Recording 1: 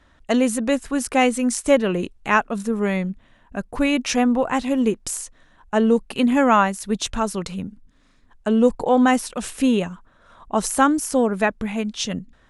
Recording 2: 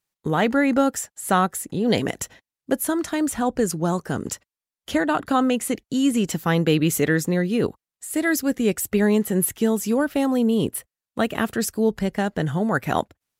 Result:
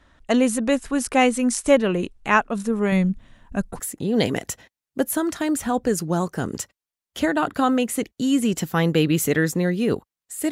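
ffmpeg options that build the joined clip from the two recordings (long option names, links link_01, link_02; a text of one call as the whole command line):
ffmpeg -i cue0.wav -i cue1.wav -filter_complex "[0:a]asettb=1/sr,asplit=3[link_01][link_02][link_03];[link_01]atrim=end=2.924[link_04];[link_02]atrim=start=2.92:end=3.8,asetpts=PTS-STARTPTS,afade=type=in:duration=0.004:curve=qsin,afade=type=out:start_time=0.876:duration=0.004:curve=qsin,bass=frequency=250:gain=7,treble=frequency=4000:gain=6[link_05];[link_03]atrim=start=3.796[link_06];[link_04][link_05]acrossfade=duration=0.004:curve1=hsin:curve2=qsin[link_07];[link_07][link_06]acrossfade=duration=0.004:curve1=qsin:curve2=hsin,apad=whole_dur=10.51,atrim=end=10.51,atrim=end=3.8,asetpts=PTS-STARTPTS[link_08];[1:a]atrim=start=1.44:end=8.23,asetpts=PTS-STARTPTS[link_09];[link_08][link_09]acrossfade=duration=0.08:curve1=tri:curve2=tri" out.wav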